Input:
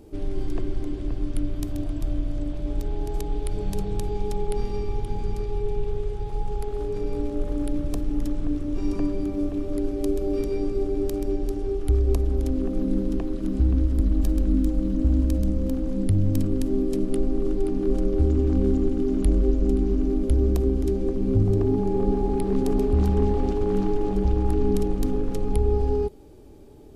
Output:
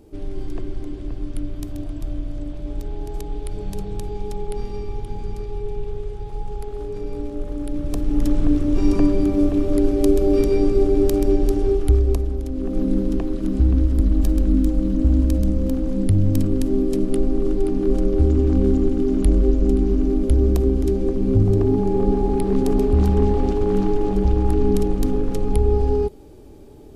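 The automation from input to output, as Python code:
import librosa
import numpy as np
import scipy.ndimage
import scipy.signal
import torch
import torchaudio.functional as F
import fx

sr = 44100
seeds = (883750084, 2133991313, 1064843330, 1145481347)

y = fx.gain(x, sr, db=fx.line((7.64, -1.0), (8.34, 8.5), (11.7, 8.5), (12.48, -3.0), (12.78, 4.0)))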